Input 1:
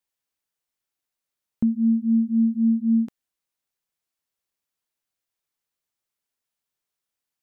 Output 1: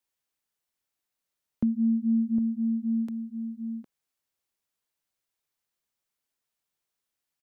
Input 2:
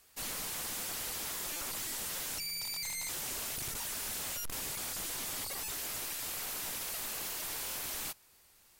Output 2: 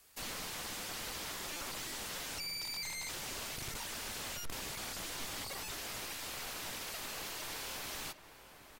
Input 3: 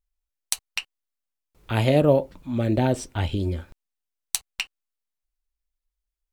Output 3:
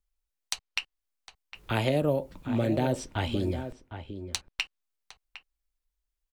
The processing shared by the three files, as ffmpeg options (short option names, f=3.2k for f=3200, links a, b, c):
-filter_complex "[0:a]acrossover=split=230|6200[a][b][c];[a]acompressor=threshold=-32dB:ratio=4[d];[b]acompressor=threshold=-25dB:ratio=4[e];[c]acompressor=threshold=-50dB:ratio=4[f];[d][e][f]amix=inputs=3:normalize=0,asplit=2[g][h];[h]adelay=758,volume=-10dB,highshelf=f=4k:g=-17.1[i];[g][i]amix=inputs=2:normalize=0"